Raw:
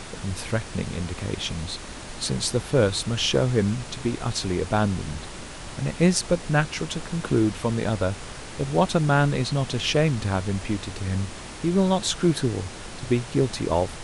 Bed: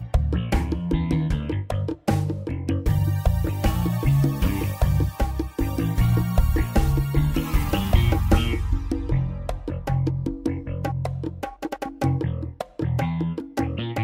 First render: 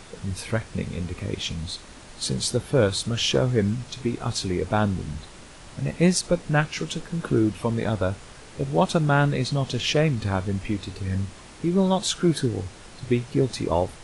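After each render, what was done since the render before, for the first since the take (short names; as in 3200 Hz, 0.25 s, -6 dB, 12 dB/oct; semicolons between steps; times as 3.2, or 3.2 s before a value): noise print and reduce 7 dB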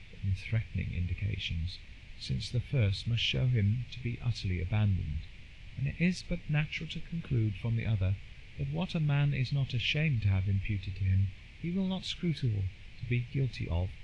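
EQ curve 100 Hz 0 dB, 320 Hz -18 dB, 1400 Hz -22 dB, 2300 Hz 0 dB, 10000 Hz -30 dB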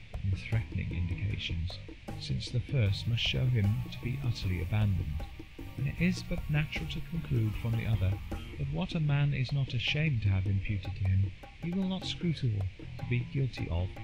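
add bed -20.5 dB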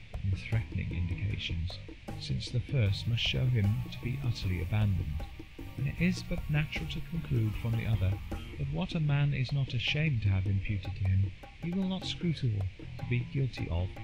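nothing audible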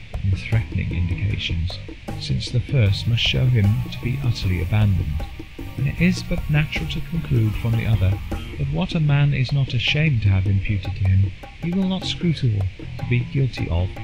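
gain +11 dB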